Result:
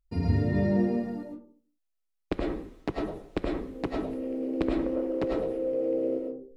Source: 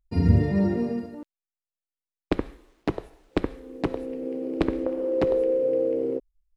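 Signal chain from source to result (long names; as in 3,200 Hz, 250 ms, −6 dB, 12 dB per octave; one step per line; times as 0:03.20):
in parallel at −2 dB: downward compressor, threshold −31 dBFS, peak gain reduction 17 dB
on the sum: comb and all-pass reverb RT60 0.44 s, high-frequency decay 0.35×, pre-delay 65 ms, DRR −1.5 dB
level −8 dB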